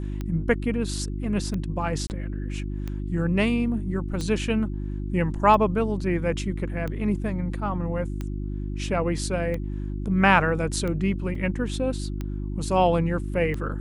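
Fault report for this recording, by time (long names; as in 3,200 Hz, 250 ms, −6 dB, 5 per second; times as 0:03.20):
mains hum 50 Hz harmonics 7 −30 dBFS
scratch tick 45 rpm −19 dBFS
0:02.07–0:02.10: drop-out 29 ms
0:11.35: drop-out 3.7 ms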